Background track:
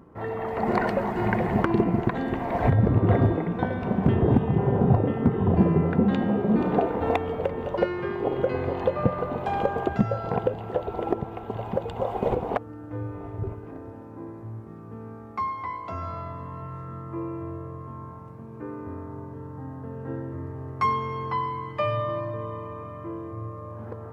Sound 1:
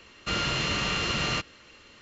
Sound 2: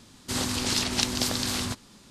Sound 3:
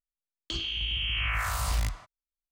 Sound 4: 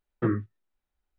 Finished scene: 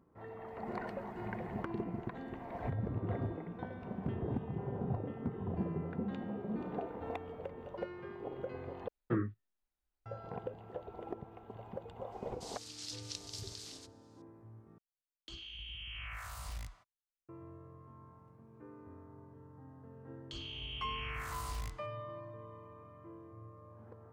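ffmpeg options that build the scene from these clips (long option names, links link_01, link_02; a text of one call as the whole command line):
ffmpeg -i bed.wav -i cue0.wav -i cue1.wav -i cue2.wav -i cue3.wav -filter_complex "[3:a]asplit=2[link_01][link_02];[0:a]volume=-17dB[link_03];[2:a]bandpass=frequency=5400:width_type=q:width=1.3:csg=0[link_04];[link_03]asplit=3[link_05][link_06][link_07];[link_05]atrim=end=8.884[link_08];[4:a]atrim=end=1.18,asetpts=PTS-STARTPTS,volume=-7.5dB[link_09];[link_06]atrim=start=10.056:end=14.784[link_10];[link_01]atrim=end=2.51,asetpts=PTS-STARTPTS,volume=-15.5dB[link_11];[link_07]atrim=start=17.286[link_12];[link_04]atrim=end=2.1,asetpts=PTS-STARTPTS,volume=-16dB,afade=type=in:duration=0.004:curve=hsin,afade=type=out:start_time=2.096:duration=0.004:curve=hsin,adelay=12120[link_13];[link_02]atrim=end=2.51,asetpts=PTS-STARTPTS,volume=-13dB,afade=type=in:duration=0.004:curve=hsin,afade=type=out:start_time=2.506:duration=0.004:curve=hsin,adelay=19810[link_14];[link_08][link_09]acrossfade=duration=0.004:curve1=hsin:curve2=hsin[link_15];[link_15][link_10]acrossfade=duration=0.004:curve1=hsin:curve2=hsin[link_16];[link_16][link_11]acrossfade=duration=0.004:curve1=hsin:curve2=hsin[link_17];[link_17][link_12]acrossfade=duration=0.004:curve1=hsin:curve2=hsin[link_18];[link_18][link_13][link_14]amix=inputs=3:normalize=0" out.wav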